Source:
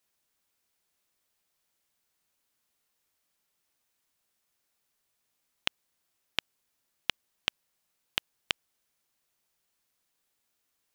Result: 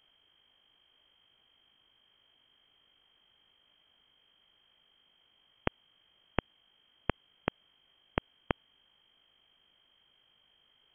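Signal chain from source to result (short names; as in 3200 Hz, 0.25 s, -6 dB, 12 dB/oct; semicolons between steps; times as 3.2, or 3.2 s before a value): limiter -15.5 dBFS, peak gain reduction 10.5 dB; hum 50 Hz, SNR 26 dB; inverted band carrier 3200 Hz; gain +11 dB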